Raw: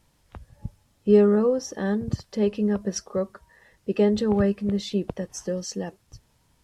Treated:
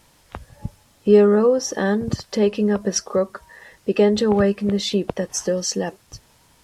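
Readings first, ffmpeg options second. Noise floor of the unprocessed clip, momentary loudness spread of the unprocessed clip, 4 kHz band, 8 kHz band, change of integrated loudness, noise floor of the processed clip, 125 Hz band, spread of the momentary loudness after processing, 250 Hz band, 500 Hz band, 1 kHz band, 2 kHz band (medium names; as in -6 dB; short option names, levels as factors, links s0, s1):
-65 dBFS, 17 LU, +9.5 dB, +10.0 dB, +4.5 dB, -57 dBFS, +2.5 dB, 15 LU, +3.0 dB, +5.5 dB, +7.5 dB, +8.5 dB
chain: -filter_complex "[0:a]lowshelf=f=240:g=-9,asplit=2[s0][s1];[s1]acompressor=threshold=0.0224:ratio=6,volume=1.26[s2];[s0][s2]amix=inputs=2:normalize=0,volume=1.78"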